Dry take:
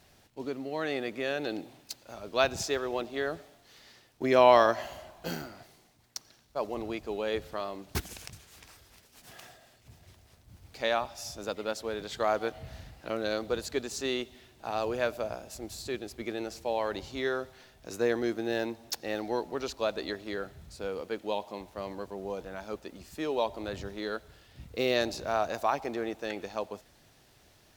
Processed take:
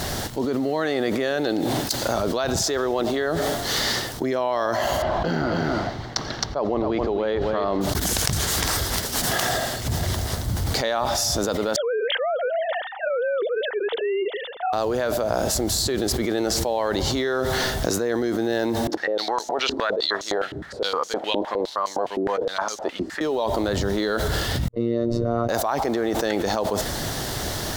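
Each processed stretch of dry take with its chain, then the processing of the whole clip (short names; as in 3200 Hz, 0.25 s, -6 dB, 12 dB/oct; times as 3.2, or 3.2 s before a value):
5.02–7.81 air absorption 220 m + echo 0.265 s -9.5 dB
11.76–14.73 sine-wave speech + notch 1100 Hz, Q 5.9
18.87–23.21 short-mantissa float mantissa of 4-bit + stepped band-pass 9.7 Hz 310–6300 Hz
24.68–25.49 gate -43 dBFS, range -45 dB + running mean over 54 samples + robotiser 117 Hz
whole clip: bell 2500 Hz -10.5 dB 0.33 oct; fast leveller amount 100%; gain -6.5 dB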